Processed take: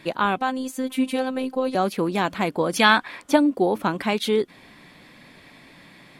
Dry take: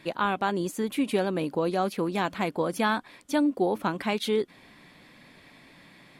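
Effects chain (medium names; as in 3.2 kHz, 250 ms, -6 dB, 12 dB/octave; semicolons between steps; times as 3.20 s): 0.38–1.75 s: robot voice 259 Hz; 2.72–3.35 s: peaking EQ 4.5 kHz -> 820 Hz +10.5 dB 2.5 oct; trim +4.5 dB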